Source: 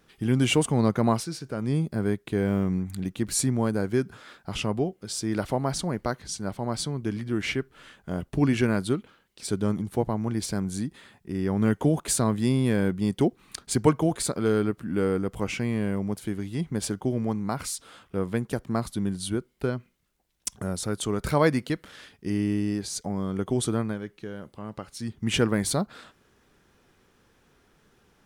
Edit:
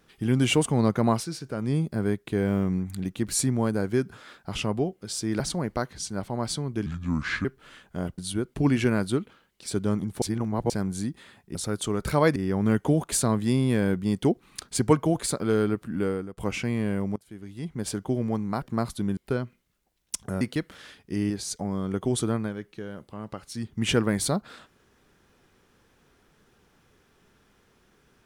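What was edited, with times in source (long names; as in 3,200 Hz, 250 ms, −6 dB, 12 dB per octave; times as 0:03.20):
0:05.40–0:05.69: remove
0:07.15–0:07.58: play speed 73%
0:09.99–0:10.47: reverse
0:14.93–0:15.34: fade out, to −20.5 dB
0:16.12–0:17.04: fade in linear, from −24 dB
0:17.58–0:18.59: remove
0:19.14–0:19.50: move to 0:08.31
0:20.74–0:21.55: move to 0:11.32
0:22.44–0:22.75: remove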